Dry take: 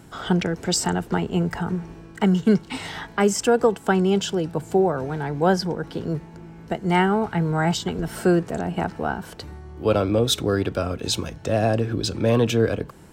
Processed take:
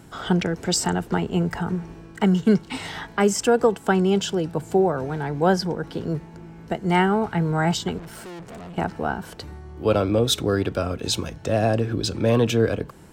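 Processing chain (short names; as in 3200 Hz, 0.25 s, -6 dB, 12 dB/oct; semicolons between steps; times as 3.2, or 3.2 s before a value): 7.98–8.78 tube stage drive 36 dB, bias 0.55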